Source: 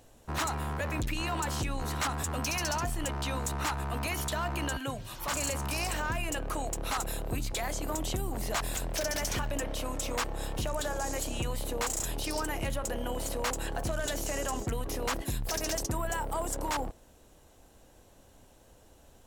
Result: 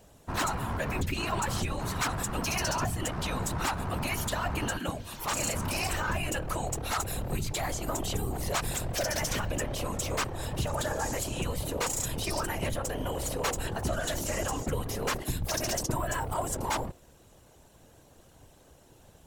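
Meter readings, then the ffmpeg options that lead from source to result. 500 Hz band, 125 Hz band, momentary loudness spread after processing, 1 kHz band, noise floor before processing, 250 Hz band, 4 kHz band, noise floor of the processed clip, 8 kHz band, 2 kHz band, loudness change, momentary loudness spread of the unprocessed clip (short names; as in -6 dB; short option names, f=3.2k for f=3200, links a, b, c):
+1.5 dB, +2.5 dB, 3 LU, +1.5 dB, -58 dBFS, +2.0 dB, +1.5 dB, -58 dBFS, +1.5 dB, +1.5 dB, +1.5 dB, 3 LU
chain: -af "afftfilt=real='hypot(re,im)*cos(2*PI*random(0))':imag='hypot(re,im)*sin(2*PI*random(1))':win_size=512:overlap=0.75,volume=7.5dB"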